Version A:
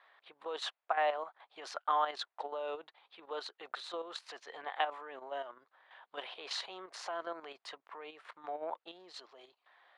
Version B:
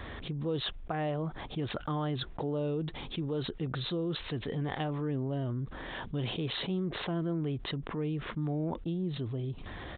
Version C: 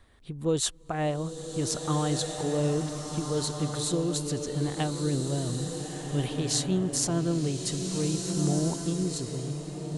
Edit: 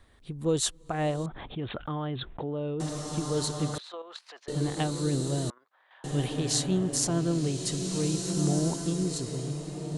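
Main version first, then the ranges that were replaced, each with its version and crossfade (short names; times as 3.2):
C
1.26–2.8 from B
3.78–4.48 from A
5.5–6.04 from A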